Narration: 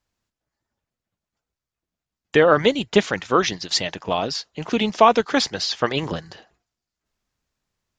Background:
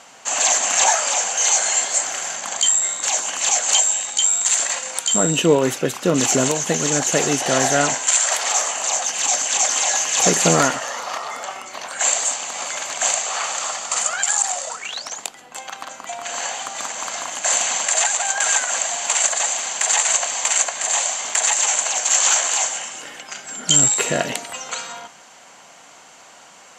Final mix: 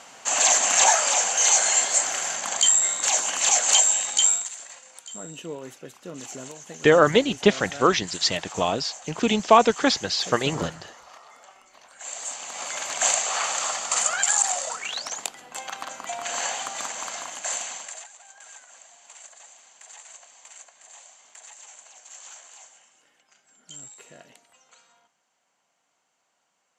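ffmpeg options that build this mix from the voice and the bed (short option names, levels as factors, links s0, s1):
-filter_complex "[0:a]adelay=4500,volume=0.891[s0];[1:a]volume=7.08,afade=t=out:st=4.28:d=0.21:silence=0.112202,afade=t=in:st=12.04:d=1.01:silence=0.11885,afade=t=out:st=16.49:d=1.58:silence=0.0501187[s1];[s0][s1]amix=inputs=2:normalize=0"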